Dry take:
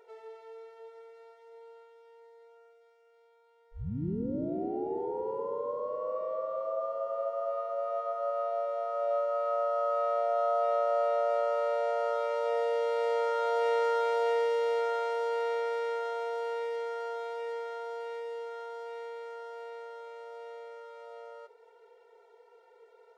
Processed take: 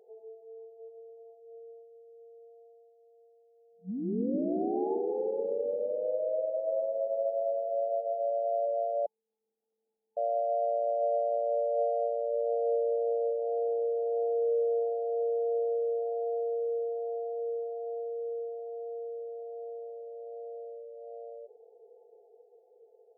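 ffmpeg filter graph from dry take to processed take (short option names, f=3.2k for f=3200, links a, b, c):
-filter_complex "[0:a]asettb=1/sr,asplit=3[a][b][c];[a]atrim=end=6.054[d];[b]atrim=start=6.05:end=6.71,asetpts=PTS-STARTPTS,afade=t=in:d=0.004:c=qsin,afade=t=out:st=0.656:d=0.004:c=qsin,equalizer=f=100:w=0.33:g=-9,aecho=1:1:6.3:0.65,atrim=end_sample=29106[e];[c]atrim=start=6.706[f];[d][e]acrossfade=d=0.004:c1=hsin:c2=qsin[g];[g][f]acrossfade=d=0.004:c1=qsin:c2=hsin,asettb=1/sr,asplit=3[h][i][j];[h]atrim=end=9.064[k];[i]atrim=start=9.06:end=10.17,asetpts=PTS-STARTPTS,afade=t=in:d=0.004:c=qsin,afade=t=out:st=1.106:d=0.004:c=qsin,highpass=f=590:t=q:w=4.4,lowpass=f=3.1k:t=q:w=0.5098,lowpass=f=3.1k:t=q:w=0.6013,lowpass=f=3.1k:t=q:w=0.9,lowpass=f=3.1k:t=q:w=2.563,afreqshift=-3700[l];[j]atrim=start=10.166[m];[k][l]acrossfade=d=0.004:c1=hsin:c2=qsin[n];[n][m]acrossfade=d=0.004:c1=qsin:c2=hsin,alimiter=level_in=1dB:limit=-24dB:level=0:latency=1:release=22,volume=-1dB,afftfilt=real='re*between(b*sr/4096,180,870)':imag='im*between(b*sr/4096,180,870)':win_size=4096:overlap=0.75,dynaudnorm=f=100:g=21:m=3.5dB"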